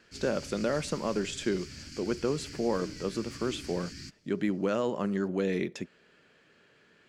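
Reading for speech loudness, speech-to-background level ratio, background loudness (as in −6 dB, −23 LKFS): −32.0 LKFS, 12.0 dB, −44.0 LKFS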